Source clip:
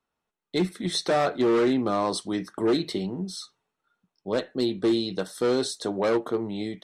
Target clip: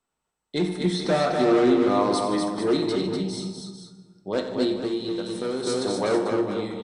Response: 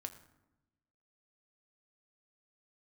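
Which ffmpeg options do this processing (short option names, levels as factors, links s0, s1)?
-filter_complex "[0:a]asettb=1/sr,asplit=3[s0][s1][s2];[s0]atrim=end=0.814[s3];[s1]atrim=start=0.81:end=1.82,asetpts=PTS-STARTPTS,afade=t=in:d=0.004:c=qsin,afade=t=out:st=1.006:d=0.004:c=qsin,acrossover=split=3800[s4][s5];[s5]acompressor=threshold=0.0158:ratio=4:attack=1:release=60[s6];[s4][s6]amix=inputs=2:normalize=0[s7];[s2]atrim=start=1.816[s8];[s3][s7]acrossfade=d=0.004:c1=hsin:c2=qsin[s9];[s9][s8]acrossfade=d=0.004:c1=qsin:c2=hsin,aecho=1:1:91|152|245|443:0.237|0.168|0.596|0.316[s10];[1:a]atrim=start_sample=2205,asetrate=24696,aresample=44100[s11];[s10][s11]afir=irnorm=-1:irlink=0,asettb=1/sr,asplit=3[s12][s13][s14];[s12]atrim=end=4.754[s15];[s13]atrim=start=4.75:end=5.67,asetpts=PTS-STARTPTS,afade=t=in:d=0.004:c=qsin,afade=t=out:st=0.916:d=0.004:c=qsin,acompressor=threshold=0.0355:ratio=2[s16];[s14]atrim=start=5.666[s17];[s15][s16]acrossfade=d=0.004:c1=hsin:c2=qsin[s18];[s18][s17]acrossfade=d=0.004:c1=qsin:c2=hsin" -ar 32000 -c:a mp2 -b:a 192k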